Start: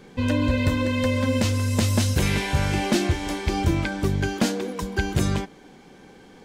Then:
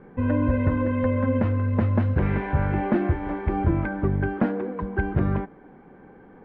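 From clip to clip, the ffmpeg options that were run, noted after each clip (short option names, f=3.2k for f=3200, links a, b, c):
-af "lowpass=f=1.7k:w=0.5412,lowpass=f=1.7k:w=1.3066"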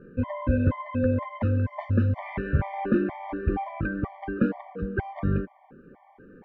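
-af "afftfilt=real='re*gt(sin(2*PI*2.1*pts/sr)*(1-2*mod(floor(b*sr/1024/600),2)),0)':imag='im*gt(sin(2*PI*2.1*pts/sr)*(1-2*mod(floor(b*sr/1024/600),2)),0)':win_size=1024:overlap=0.75"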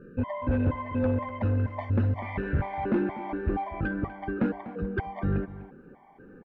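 -af "asoftclip=type=tanh:threshold=-18.5dB,aecho=1:1:246:0.168"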